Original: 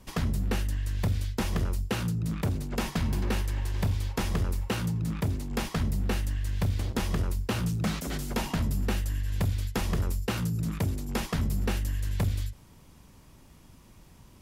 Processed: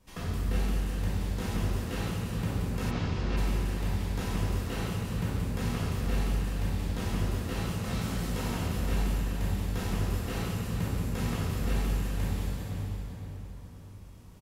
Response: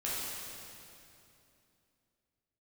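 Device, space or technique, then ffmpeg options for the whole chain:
cave: -filter_complex "[0:a]aecho=1:1:382:0.316[link_01];[1:a]atrim=start_sample=2205[link_02];[link_01][link_02]afir=irnorm=-1:irlink=0,asplit=3[link_03][link_04][link_05];[link_03]afade=type=out:start_time=2.9:duration=0.02[link_06];[link_04]lowpass=frequency=5900:width=0.5412,lowpass=frequency=5900:width=1.3066,afade=type=in:start_time=2.9:duration=0.02,afade=type=out:start_time=3.36:duration=0.02[link_07];[link_05]afade=type=in:start_time=3.36:duration=0.02[link_08];[link_06][link_07][link_08]amix=inputs=3:normalize=0,asplit=2[link_09][link_10];[link_10]adelay=516,lowpass=frequency=2000:poles=1,volume=-7.5dB,asplit=2[link_11][link_12];[link_12]adelay=516,lowpass=frequency=2000:poles=1,volume=0.48,asplit=2[link_13][link_14];[link_14]adelay=516,lowpass=frequency=2000:poles=1,volume=0.48,asplit=2[link_15][link_16];[link_16]adelay=516,lowpass=frequency=2000:poles=1,volume=0.48,asplit=2[link_17][link_18];[link_18]adelay=516,lowpass=frequency=2000:poles=1,volume=0.48,asplit=2[link_19][link_20];[link_20]adelay=516,lowpass=frequency=2000:poles=1,volume=0.48[link_21];[link_09][link_11][link_13][link_15][link_17][link_19][link_21]amix=inputs=7:normalize=0,volume=-8dB"

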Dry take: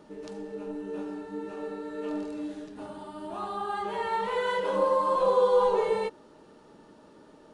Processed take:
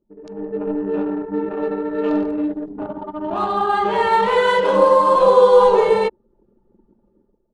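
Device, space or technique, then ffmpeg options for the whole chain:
voice memo with heavy noise removal: -af "anlmdn=0.631,dynaudnorm=framelen=110:gausssize=7:maxgain=14dB"

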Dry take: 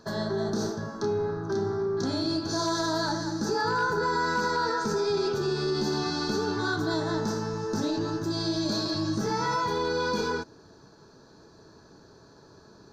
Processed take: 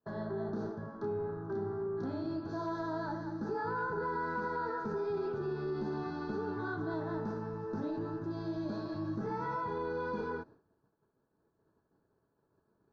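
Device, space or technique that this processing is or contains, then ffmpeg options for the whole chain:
hearing-loss simulation: -af "lowpass=1600,agate=range=-33dB:threshold=-43dB:ratio=3:detection=peak,volume=-8dB"

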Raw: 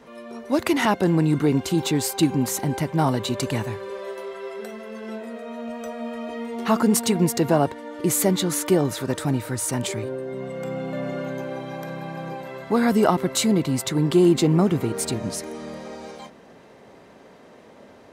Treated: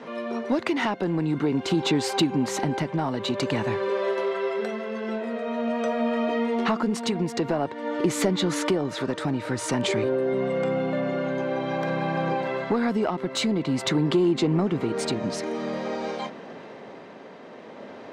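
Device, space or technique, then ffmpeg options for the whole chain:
AM radio: -af "highpass=160,lowpass=4300,acompressor=threshold=-27dB:ratio=5,asoftclip=type=tanh:threshold=-19.5dB,tremolo=f=0.49:d=0.34,volume=8.5dB"

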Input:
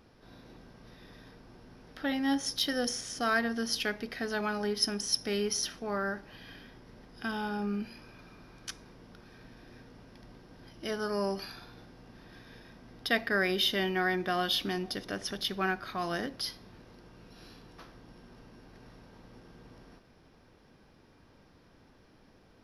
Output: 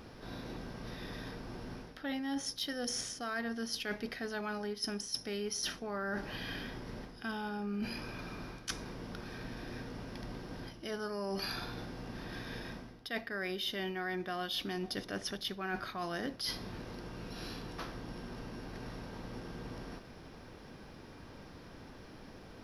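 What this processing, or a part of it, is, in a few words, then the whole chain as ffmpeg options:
compression on the reversed sound: -af "areverse,acompressor=threshold=-44dB:ratio=10,areverse,volume=9dB"

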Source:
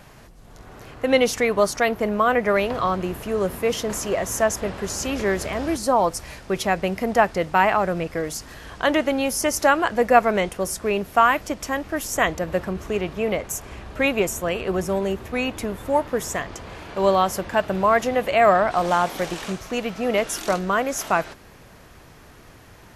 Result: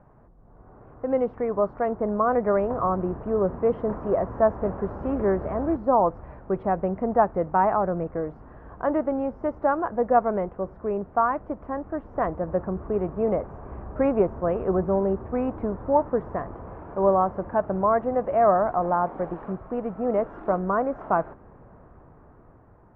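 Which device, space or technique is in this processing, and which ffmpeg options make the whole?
action camera in a waterproof case: -af "lowpass=frequency=1200:width=0.5412,lowpass=frequency=1200:width=1.3066,dynaudnorm=framelen=750:gausssize=5:maxgain=12dB,volume=-6.5dB" -ar 44100 -c:a aac -b:a 128k

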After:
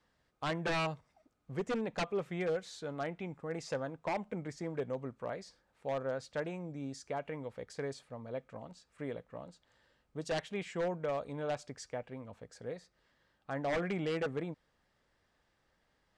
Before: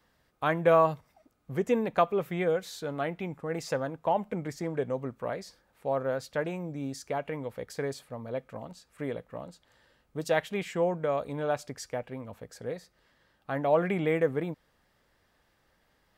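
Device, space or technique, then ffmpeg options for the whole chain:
synthesiser wavefolder: -af "aeval=exprs='0.0841*(abs(mod(val(0)/0.0841+3,4)-2)-1)':channel_layout=same,lowpass=frequency=8800:width=0.5412,lowpass=frequency=8800:width=1.3066,volume=-6dB"

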